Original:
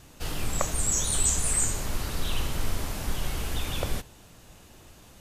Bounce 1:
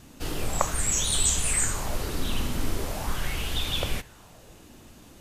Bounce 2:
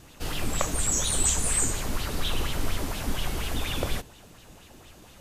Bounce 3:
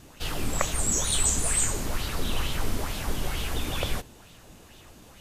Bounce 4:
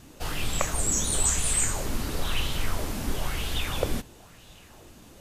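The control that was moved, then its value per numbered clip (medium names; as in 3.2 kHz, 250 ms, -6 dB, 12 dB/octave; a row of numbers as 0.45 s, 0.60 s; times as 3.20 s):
sweeping bell, rate: 0.41 Hz, 4.2 Hz, 2.2 Hz, 1 Hz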